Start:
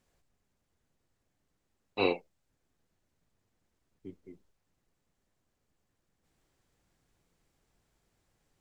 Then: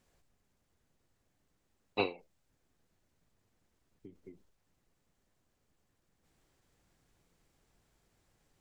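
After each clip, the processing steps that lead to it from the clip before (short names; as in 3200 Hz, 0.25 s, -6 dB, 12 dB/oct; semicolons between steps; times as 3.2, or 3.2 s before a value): ending taper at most 170 dB/s; gain +2 dB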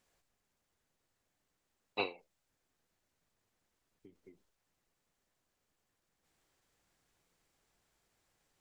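low shelf 390 Hz -9.5 dB; gain -1 dB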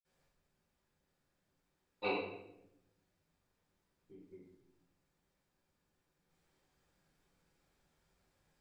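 reverb RT60 0.85 s, pre-delay 47 ms; gain +12 dB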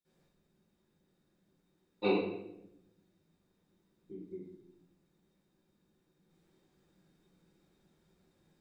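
small resonant body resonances 200/330/3700 Hz, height 14 dB, ringing for 40 ms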